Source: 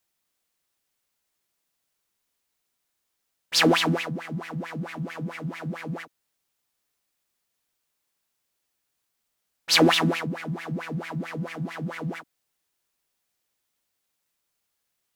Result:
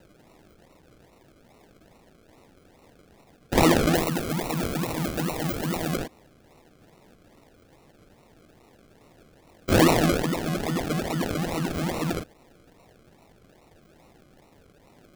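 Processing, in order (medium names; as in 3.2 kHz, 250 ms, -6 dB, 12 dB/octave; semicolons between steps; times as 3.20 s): spectral levelling over time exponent 0.6; decimation with a swept rate 38×, swing 60% 2.4 Hz; 3.95–5.96 s: treble shelf 11 kHz +9 dB; trim -1.5 dB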